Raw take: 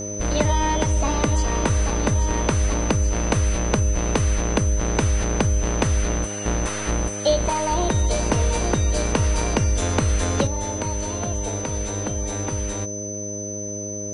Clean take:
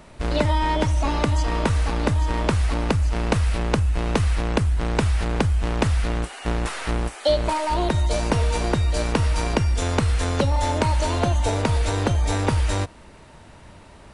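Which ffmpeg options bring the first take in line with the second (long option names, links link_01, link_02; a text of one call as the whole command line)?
ffmpeg -i in.wav -af "bandreject=frequency=102.6:width_type=h:width=4,bandreject=frequency=205.2:width_type=h:width=4,bandreject=frequency=307.8:width_type=h:width=4,bandreject=frequency=410.4:width_type=h:width=4,bandreject=frequency=513:width_type=h:width=4,bandreject=frequency=615.6:width_type=h:width=4,bandreject=frequency=6100:width=30,asetnsamples=nb_out_samples=441:pad=0,asendcmd='10.47 volume volume 7.5dB',volume=0dB" out.wav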